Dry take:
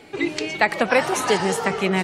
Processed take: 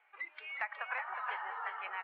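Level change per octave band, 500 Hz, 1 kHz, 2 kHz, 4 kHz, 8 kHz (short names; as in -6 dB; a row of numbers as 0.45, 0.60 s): -32.5 dB, -15.5 dB, -15.0 dB, -25.0 dB, under -40 dB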